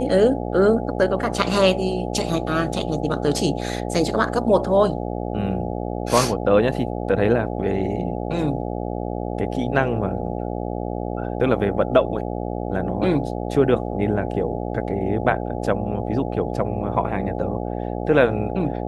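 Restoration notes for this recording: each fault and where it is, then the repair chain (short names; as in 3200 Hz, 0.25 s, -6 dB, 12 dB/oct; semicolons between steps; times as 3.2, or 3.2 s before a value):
buzz 60 Hz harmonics 14 -27 dBFS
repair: de-hum 60 Hz, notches 14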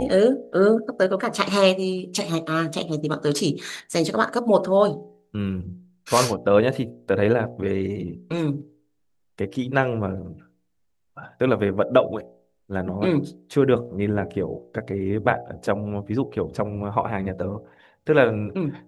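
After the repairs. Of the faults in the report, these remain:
none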